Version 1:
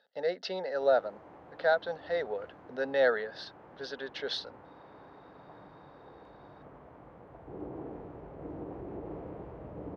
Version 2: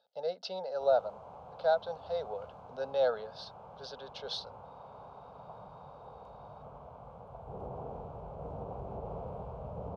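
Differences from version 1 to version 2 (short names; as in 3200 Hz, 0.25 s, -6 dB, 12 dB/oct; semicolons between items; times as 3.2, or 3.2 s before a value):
background +5.5 dB; master: add fixed phaser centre 770 Hz, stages 4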